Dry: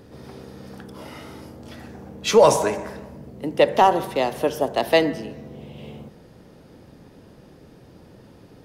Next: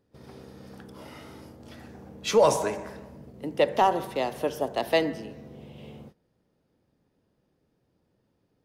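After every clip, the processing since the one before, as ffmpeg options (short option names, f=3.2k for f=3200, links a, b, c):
-af "agate=range=-18dB:threshold=-41dB:ratio=16:detection=peak,volume=-6dB"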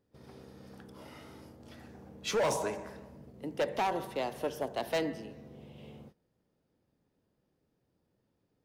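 -af "asoftclip=type=hard:threshold=-20dB,volume=-5.5dB"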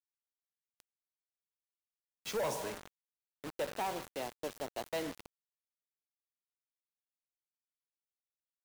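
-af "acrusher=bits=5:mix=0:aa=0.000001,volume=-7dB"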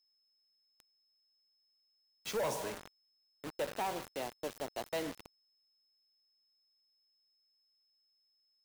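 -af "aeval=exprs='val(0)+0.0002*sin(2*PI*5200*n/s)':c=same"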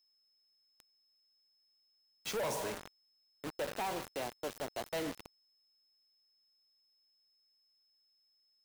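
-af "asoftclip=type=hard:threshold=-35dB,volume=2dB"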